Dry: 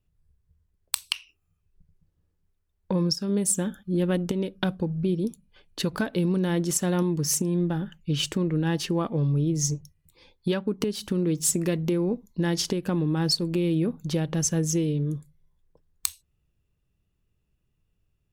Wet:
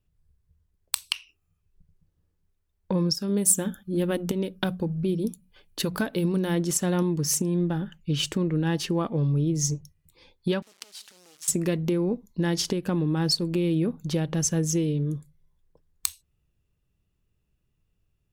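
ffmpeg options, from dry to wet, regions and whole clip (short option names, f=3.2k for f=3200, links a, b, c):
-filter_complex "[0:a]asettb=1/sr,asplit=3[a][b][c];[a]atrim=end=3.154[d];[b]atrim=start=3.15:end=6.55,asetpts=PTS-STARTPTS,afade=t=in:d=0.004:c=qsin,afade=t=out:st=3.396:d=0.004:c=qsin,equalizer=f=15k:t=o:w=0.83:g=11,bandreject=f=60:t=h:w=6,bandreject=f=120:t=h:w=6,bandreject=f=180:t=h:w=6[e];[c]atrim=start=6.546[f];[d][e]acrossfade=d=0.004:c1=hsin:c2=qsin[g];[g][f]acrossfade=d=0.004:c1=qsin:c2=hsin,asettb=1/sr,asplit=3[h][i][j];[h]atrim=end=10.624[k];[i]atrim=start=10.62:end=11.48,asetpts=PTS-STARTPTS,afade=t=in:d=0.004:c=qsin,afade=t=out:st=0.856:d=0.004:c=qsin,acompressor=threshold=-30dB:ratio=12:attack=3.2:release=140:knee=1:detection=peak,acrusher=bits=5:dc=4:mix=0:aa=0.000001,bandpass=f=6k:t=q:w=0.59[l];[j]atrim=start=11.476[m];[k][l]acrossfade=d=0.004:c1=hsin:c2=qsin[n];[n][m]acrossfade=d=0.004:c1=qsin:c2=hsin"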